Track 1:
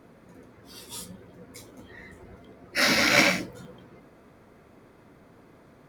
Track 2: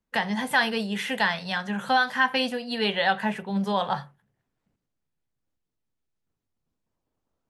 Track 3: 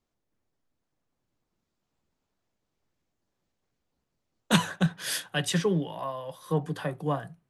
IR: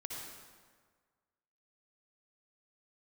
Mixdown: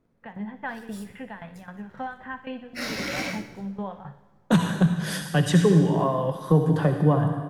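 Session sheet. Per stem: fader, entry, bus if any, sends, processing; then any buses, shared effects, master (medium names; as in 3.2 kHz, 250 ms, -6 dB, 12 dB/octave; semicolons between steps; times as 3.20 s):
-18.0 dB, 0.00 s, no bus, send -14 dB, echo send -14 dB, waveshaping leveller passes 2
-8.0 dB, 0.10 s, bus A, send -17 dB, echo send -19.5 dB, low-pass 2.8 kHz 24 dB/octave; tremolo saw down 3.8 Hz, depth 85%
-2.0 dB, 0.00 s, bus A, send -8.5 dB, no echo send, level rider gain up to 13 dB; peaking EQ 2.7 kHz -3.5 dB
bus A: 0.0 dB, low-pass 1.3 kHz 6 dB/octave; compression, threshold -24 dBFS, peak gain reduction 12 dB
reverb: on, RT60 1.6 s, pre-delay 53 ms
echo: feedback delay 61 ms, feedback 60%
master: bass shelf 270 Hz +8 dB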